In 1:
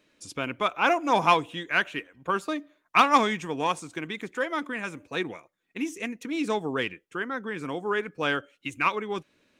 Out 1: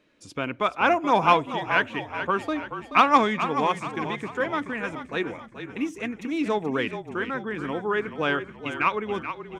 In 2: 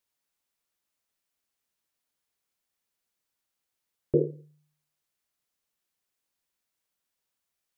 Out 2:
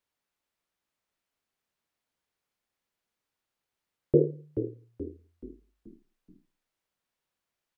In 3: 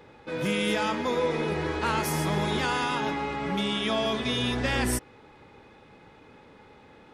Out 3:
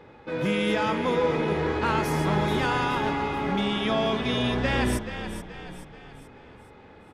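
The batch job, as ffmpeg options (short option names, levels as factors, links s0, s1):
-filter_complex "[0:a]highshelf=f=4600:g=-11.5,asplit=6[s0][s1][s2][s3][s4][s5];[s1]adelay=429,afreqshift=-33,volume=0.316[s6];[s2]adelay=858,afreqshift=-66,volume=0.148[s7];[s3]adelay=1287,afreqshift=-99,volume=0.07[s8];[s4]adelay=1716,afreqshift=-132,volume=0.0327[s9];[s5]adelay=2145,afreqshift=-165,volume=0.0155[s10];[s0][s6][s7][s8][s9][s10]amix=inputs=6:normalize=0,volume=1.33"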